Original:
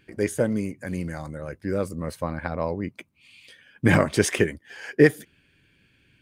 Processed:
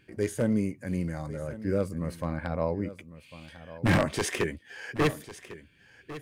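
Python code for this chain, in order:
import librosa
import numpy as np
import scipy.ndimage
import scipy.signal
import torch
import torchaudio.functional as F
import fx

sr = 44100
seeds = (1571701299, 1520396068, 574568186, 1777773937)

y = 10.0 ** (-13.0 / 20.0) * (np.abs((x / 10.0 ** (-13.0 / 20.0) + 3.0) % 4.0 - 2.0) - 1.0)
y = fx.hpss(y, sr, part='harmonic', gain_db=8)
y = y + 10.0 ** (-15.5 / 20.0) * np.pad(y, (int(1100 * sr / 1000.0), 0))[:len(y)]
y = y * 10.0 ** (-7.5 / 20.0)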